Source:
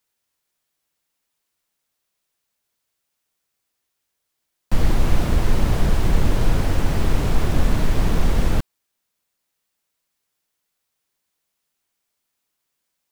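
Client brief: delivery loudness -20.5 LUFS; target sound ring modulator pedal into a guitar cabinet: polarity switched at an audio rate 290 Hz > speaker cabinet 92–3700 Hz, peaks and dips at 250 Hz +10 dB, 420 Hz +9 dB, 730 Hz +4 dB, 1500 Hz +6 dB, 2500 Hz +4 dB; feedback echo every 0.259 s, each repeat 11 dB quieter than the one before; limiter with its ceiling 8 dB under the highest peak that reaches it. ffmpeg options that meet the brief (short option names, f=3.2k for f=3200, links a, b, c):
-af "alimiter=limit=-11.5dB:level=0:latency=1,aecho=1:1:259|518|777:0.282|0.0789|0.0221,aeval=exprs='val(0)*sgn(sin(2*PI*290*n/s))':c=same,highpass=92,equalizer=f=250:t=q:w=4:g=10,equalizer=f=420:t=q:w=4:g=9,equalizer=f=730:t=q:w=4:g=4,equalizer=f=1.5k:t=q:w=4:g=6,equalizer=f=2.5k:t=q:w=4:g=4,lowpass=f=3.7k:w=0.5412,lowpass=f=3.7k:w=1.3066,volume=-8dB"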